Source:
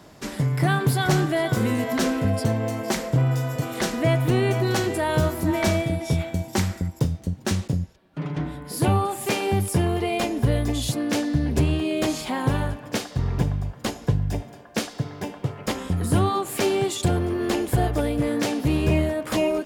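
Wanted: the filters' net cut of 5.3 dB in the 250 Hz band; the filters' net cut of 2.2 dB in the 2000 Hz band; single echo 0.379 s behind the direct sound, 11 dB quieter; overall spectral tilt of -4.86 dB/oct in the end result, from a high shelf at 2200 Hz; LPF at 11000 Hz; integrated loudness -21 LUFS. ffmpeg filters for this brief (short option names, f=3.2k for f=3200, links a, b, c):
-af "lowpass=11k,equalizer=f=250:t=o:g=-8,equalizer=f=2k:t=o:g=-5,highshelf=f=2.2k:g=4,aecho=1:1:379:0.282,volume=5dB"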